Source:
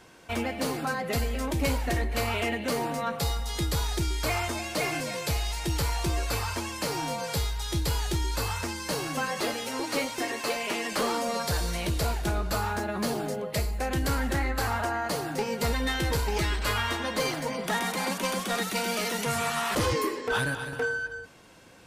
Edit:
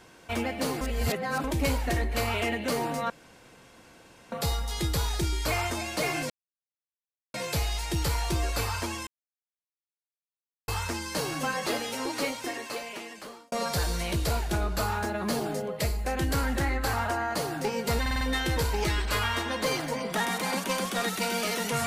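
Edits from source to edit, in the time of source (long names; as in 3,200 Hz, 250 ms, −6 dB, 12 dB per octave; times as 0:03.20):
0:00.81–0:01.44: reverse
0:03.10: splice in room tone 1.22 s
0:05.08: splice in silence 1.04 s
0:06.81–0:08.42: silence
0:09.76–0:11.26: fade out linear
0:15.75: stutter 0.05 s, 5 plays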